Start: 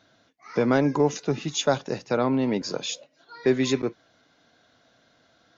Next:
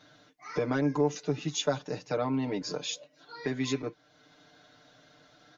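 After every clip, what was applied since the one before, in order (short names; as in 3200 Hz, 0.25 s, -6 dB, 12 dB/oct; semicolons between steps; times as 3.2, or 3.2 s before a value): compressor 1.5:1, threshold -47 dBFS, peak gain reduction 11.5 dB; comb 6.7 ms, depth 99%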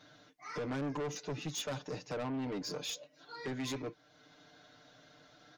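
soft clip -32.5 dBFS, distortion -6 dB; gain -1.5 dB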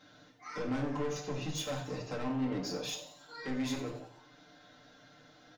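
on a send: frequency-shifting echo 92 ms, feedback 52%, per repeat +150 Hz, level -13 dB; on the sum: shoebox room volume 470 m³, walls furnished, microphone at 2.1 m; gain -2 dB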